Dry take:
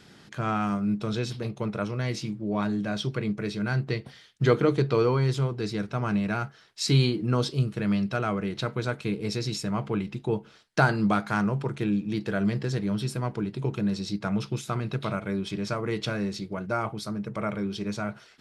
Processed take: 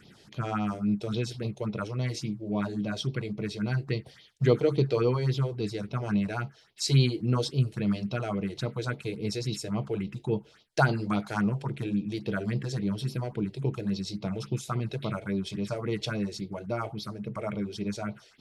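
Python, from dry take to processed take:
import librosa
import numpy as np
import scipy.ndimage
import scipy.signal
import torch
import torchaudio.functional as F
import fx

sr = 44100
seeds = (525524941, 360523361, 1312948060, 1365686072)

y = fx.phaser_stages(x, sr, stages=4, low_hz=180.0, high_hz=1700.0, hz=3.6, feedback_pct=5)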